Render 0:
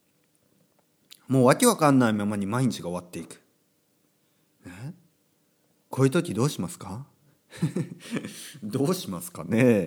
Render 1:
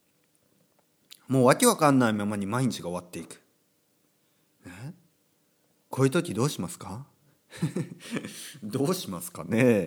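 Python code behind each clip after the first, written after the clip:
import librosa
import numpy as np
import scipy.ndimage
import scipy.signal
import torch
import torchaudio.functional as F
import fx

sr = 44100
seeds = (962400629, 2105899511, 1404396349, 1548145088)

y = fx.peak_eq(x, sr, hz=170.0, db=-2.5, octaves=2.6)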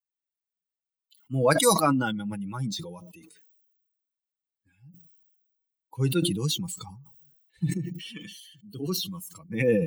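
y = fx.bin_expand(x, sr, power=2.0)
y = y + 0.51 * np.pad(y, (int(6.2 * sr / 1000.0), 0))[:len(y)]
y = fx.sustainer(y, sr, db_per_s=43.0)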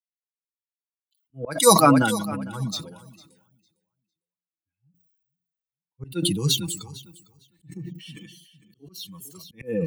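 y = fx.echo_feedback(x, sr, ms=454, feedback_pct=33, wet_db=-13.0)
y = fx.auto_swell(y, sr, attack_ms=263.0)
y = fx.band_widen(y, sr, depth_pct=70)
y = F.gain(torch.from_numpy(y), 1.0).numpy()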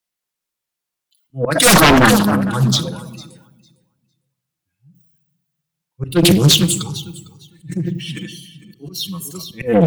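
y = fx.fold_sine(x, sr, drive_db=14, ceiling_db=-1.0)
y = fx.room_shoebox(y, sr, seeds[0], volume_m3=3600.0, walls='furnished', distance_m=0.9)
y = fx.doppler_dist(y, sr, depth_ms=0.63)
y = F.gain(torch.from_numpy(y), -4.5).numpy()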